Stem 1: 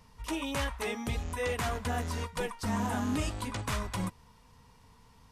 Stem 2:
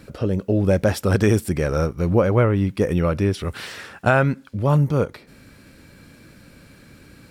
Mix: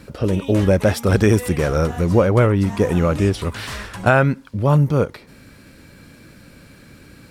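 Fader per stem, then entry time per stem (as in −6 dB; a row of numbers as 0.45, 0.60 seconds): +0.5, +2.5 decibels; 0.00, 0.00 seconds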